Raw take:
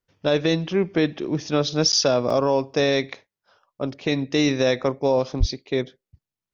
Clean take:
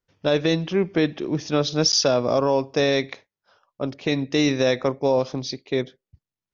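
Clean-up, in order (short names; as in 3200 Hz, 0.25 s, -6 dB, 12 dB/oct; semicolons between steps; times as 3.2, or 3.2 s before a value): 5.39–5.51 HPF 140 Hz 24 dB/oct; interpolate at 2.3, 4.5 ms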